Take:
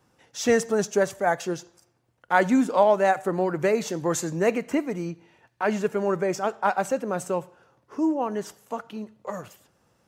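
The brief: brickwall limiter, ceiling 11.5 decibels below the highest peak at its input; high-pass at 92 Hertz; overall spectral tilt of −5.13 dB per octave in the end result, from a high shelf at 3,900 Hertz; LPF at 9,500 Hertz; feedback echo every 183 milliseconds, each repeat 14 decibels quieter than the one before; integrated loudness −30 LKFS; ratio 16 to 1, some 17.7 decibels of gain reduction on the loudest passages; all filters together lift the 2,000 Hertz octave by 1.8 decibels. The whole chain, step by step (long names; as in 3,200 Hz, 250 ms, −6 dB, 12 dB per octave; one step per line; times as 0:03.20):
high-pass filter 92 Hz
low-pass filter 9,500 Hz
parametric band 2,000 Hz +4 dB
high-shelf EQ 3,900 Hz −7.5 dB
downward compressor 16 to 1, threshold −32 dBFS
brickwall limiter −31 dBFS
repeating echo 183 ms, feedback 20%, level −14 dB
level +11.5 dB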